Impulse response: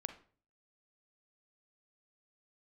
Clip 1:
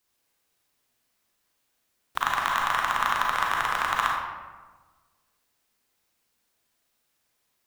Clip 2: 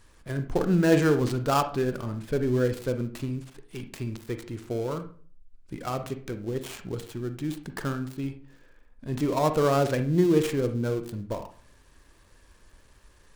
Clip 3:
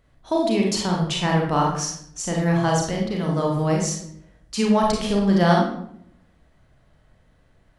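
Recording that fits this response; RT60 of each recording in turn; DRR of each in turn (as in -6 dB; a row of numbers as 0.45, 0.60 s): 2; 1.4, 0.45, 0.70 s; -2.5, 8.0, -1.5 dB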